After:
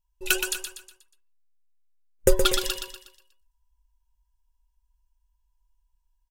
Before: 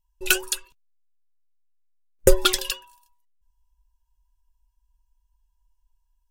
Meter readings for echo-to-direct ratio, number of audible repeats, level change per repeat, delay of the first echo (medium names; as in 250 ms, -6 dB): -5.5 dB, 4, -7.5 dB, 121 ms